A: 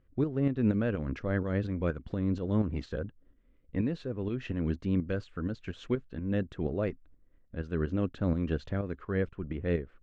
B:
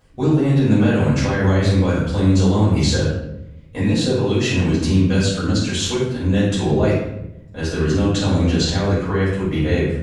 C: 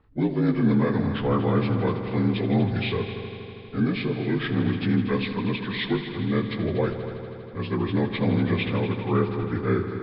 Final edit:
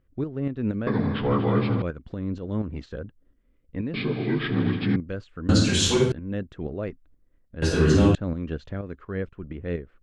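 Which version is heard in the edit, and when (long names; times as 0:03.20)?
A
0:00.87–0:01.82: punch in from C
0:03.94–0:04.96: punch in from C
0:05.49–0:06.12: punch in from B
0:07.62–0:08.15: punch in from B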